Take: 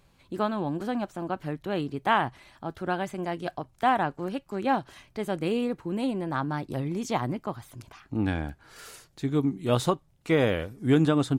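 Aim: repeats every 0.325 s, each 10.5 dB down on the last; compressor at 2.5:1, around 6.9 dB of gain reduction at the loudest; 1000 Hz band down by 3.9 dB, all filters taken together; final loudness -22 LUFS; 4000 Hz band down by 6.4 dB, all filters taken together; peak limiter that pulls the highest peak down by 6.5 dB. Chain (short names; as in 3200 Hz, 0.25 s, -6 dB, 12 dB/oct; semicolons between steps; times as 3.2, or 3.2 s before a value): bell 1000 Hz -5 dB; bell 4000 Hz -8.5 dB; compressor 2.5:1, threshold -28 dBFS; limiter -24 dBFS; feedback echo 0.325 s, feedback 30%, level -10.5 dB; gain +13 dB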